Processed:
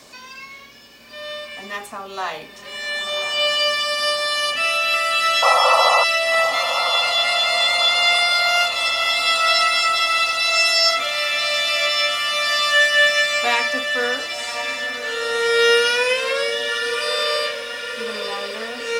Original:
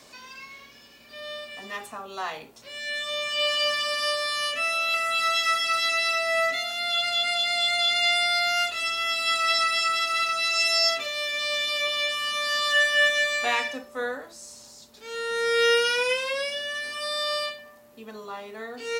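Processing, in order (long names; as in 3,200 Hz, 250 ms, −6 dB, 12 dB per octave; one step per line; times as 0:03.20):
sound drawn into the spectrogram noise, 0:05.42–0:06.04, 490–1,400 Hz −22 dBFS
feedback delay with all-pass diffusion 1,075 ms, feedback 64%, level −8.5 dB
level +5.5 dB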